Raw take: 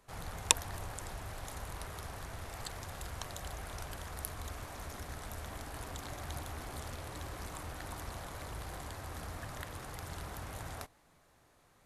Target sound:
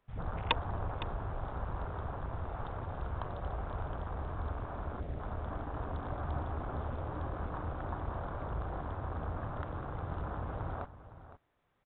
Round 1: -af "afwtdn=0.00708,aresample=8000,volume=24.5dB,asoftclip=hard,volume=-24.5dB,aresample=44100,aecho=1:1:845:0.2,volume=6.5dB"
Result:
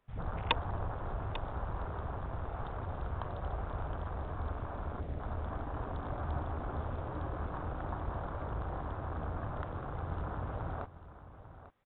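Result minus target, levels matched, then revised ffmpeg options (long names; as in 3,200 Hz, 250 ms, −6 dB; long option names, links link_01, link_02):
echo 334 ms late
-af "afwtdn=0.00708,aresample=8000,volume=24.5dB,asoftclip=hard,volume=-24.5dB,aresample=44100,aecho=1:1:511:0.2,volume=6.5dB"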